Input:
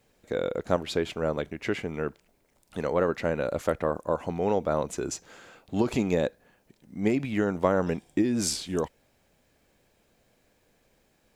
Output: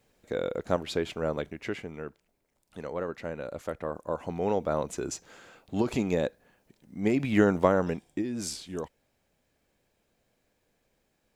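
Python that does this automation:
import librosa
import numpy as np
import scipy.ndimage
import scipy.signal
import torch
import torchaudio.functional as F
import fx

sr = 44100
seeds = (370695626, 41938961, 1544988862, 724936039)

y = fx.gain(x, sr, db=fx.line((1.41, -2.0), (2.06, -8.5), (3.66, -8.5), (4.43, -2.0), (7.04, -2.0), (7.41, 5.0), (8.22, -7.0)))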